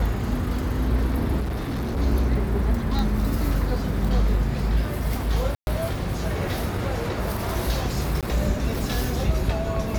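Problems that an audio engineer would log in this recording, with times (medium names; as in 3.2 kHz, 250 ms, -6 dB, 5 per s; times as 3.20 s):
1.40–1.98 s: clipped -23.5 dBFS
2.99 s: pop
5.55–5.67 s: dropout 121 ms
8.21–8.23 s: dropout 17 ms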